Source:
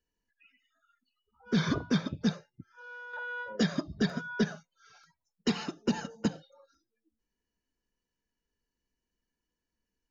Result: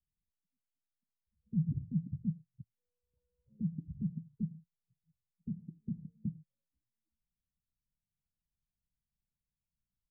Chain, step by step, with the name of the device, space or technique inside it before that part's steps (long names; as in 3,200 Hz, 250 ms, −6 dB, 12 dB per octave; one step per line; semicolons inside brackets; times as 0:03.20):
the neighbour's flat through the wall (low-pass filter 170 Hz 24 dB per octave; parametric band 140 Hz +7 dB 0.98 octaves)
level −4 dB